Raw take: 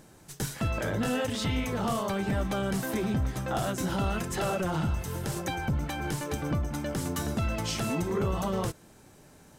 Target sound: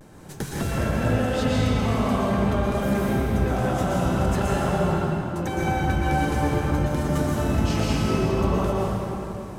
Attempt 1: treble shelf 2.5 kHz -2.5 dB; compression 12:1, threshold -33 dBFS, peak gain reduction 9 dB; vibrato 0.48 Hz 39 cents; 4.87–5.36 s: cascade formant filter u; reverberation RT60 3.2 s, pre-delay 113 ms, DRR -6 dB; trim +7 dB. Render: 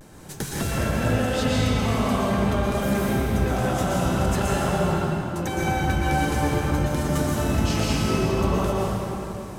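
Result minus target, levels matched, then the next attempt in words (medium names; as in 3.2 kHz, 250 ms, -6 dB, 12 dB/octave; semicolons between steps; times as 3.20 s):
4 kHz band +3.0 dB
treble shelf 2.5 kHz -8.5 dB; compression 12:1, threshold -33 dBFS, peak gain reduction 9 dB; vibrato 0.48 Hz 39 cents; 4.87–5.36 s: cascade formant filter u; reverberation RT60 3.2 s, pre-delay 113 ms, DRR -6 dB; trim +7 dB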